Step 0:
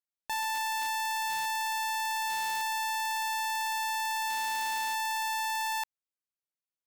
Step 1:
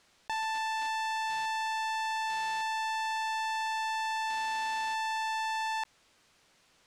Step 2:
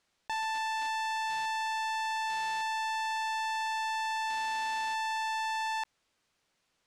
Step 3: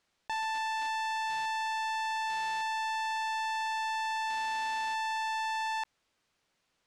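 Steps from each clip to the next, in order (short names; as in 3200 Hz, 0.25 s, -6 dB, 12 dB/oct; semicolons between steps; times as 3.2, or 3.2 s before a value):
air absorption 82 m; fast leveller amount 50%
upward expander 1.5:1, over -54 dBFS
high shelf 7400 Hz -4 dB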